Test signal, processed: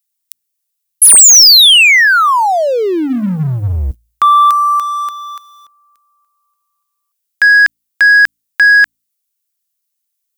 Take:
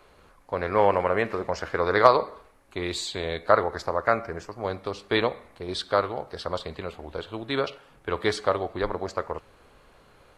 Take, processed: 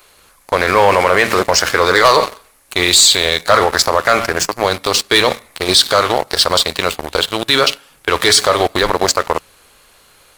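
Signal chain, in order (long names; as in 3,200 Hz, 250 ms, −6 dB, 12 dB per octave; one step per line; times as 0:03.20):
first-order pre-emphasis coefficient 0.9
hum removal 56.49 Hz, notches 5
leveller curve on the samples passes 3
boost into a limiter +27 dB
level −1 dB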